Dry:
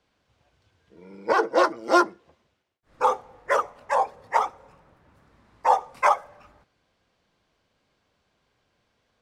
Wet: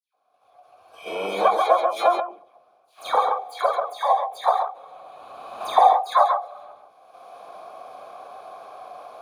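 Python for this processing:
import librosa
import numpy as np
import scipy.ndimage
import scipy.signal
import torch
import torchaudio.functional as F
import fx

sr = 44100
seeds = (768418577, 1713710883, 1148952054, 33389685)

p1 = fx.bit_reversed(x, sr, seeds[0], block=16)
p2 = fx.recorder_agc(p1, sr, target_db=-12.0, rise_db_per_s=25.0, max_gain_db=30)
p3 = fx.vowel_filter(p2, sr, vowel='a')
p4 = fx.low_shelf(p3, sr, hz=400.0, db=-7.5)
p5 = fx.dispersion(p4, sr, late='lows', ms=147.0, hz=2300.0)
p6 = fx.level_steps(p5, sr, step_db=16)
p7 = p5 + (p6 * librosa.db_to_amplitude(-2.0))
p8 = fx.peak_eq(p7, sr, hz=790.0, db=3.5, octaves=2.1)
p9 = fx.hum_notches(p8, sr, base_hz=60, count=6)
p10 = p9 + fx.echo_single(p9, sr, ms=137, db=-4.5, dry=0)
p11 = fx.end_taper(p10, sr, db_per_s=150.0)
y = p11 * librosa.db_to_amplitude(8.5)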